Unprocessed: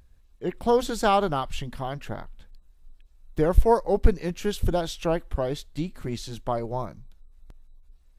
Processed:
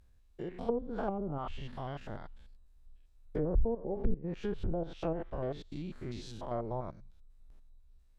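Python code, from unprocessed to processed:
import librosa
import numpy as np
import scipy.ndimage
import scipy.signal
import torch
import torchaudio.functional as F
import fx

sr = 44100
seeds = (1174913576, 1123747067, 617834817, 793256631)

y = fx.spec_steps(x, sr, hold_ms=100)
y = fx.env_lowpass_down(y, sr, base_hz=330.0, full_db=-20.0)
y = y * 10.0 ** (-6.0 / 20.0)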